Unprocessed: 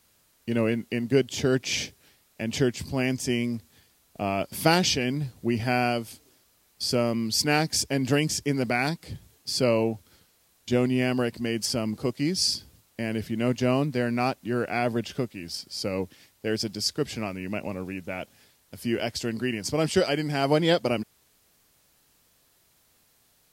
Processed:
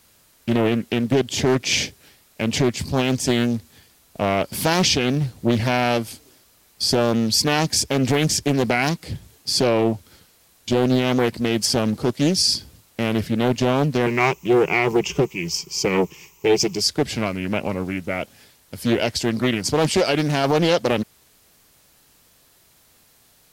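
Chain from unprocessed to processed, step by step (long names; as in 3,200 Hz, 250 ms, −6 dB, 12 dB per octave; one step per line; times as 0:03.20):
0:14.06–0:16.81: EQ curve with evenly spaced ripples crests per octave 0.75, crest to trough 16 dB
brickwall limiter −15.5 dBFS, peak gain reduction 8.5 dB
highs frequency-modulated by the lows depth 0.54 ms
level +8 dB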